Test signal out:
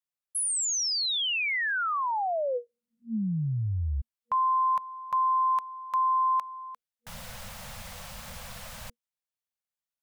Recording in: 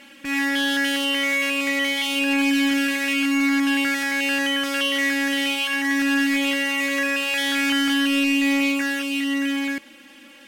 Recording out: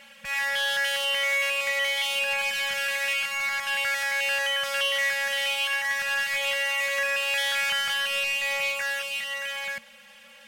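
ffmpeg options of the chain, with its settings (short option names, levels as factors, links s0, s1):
-af "afftfilt=real='re*(1-between(b*sr/4096,230,480))':imag='im*(1-between(b*sr/4096,230,480))':win_size=4096:overlap=0.75,volume=0.75"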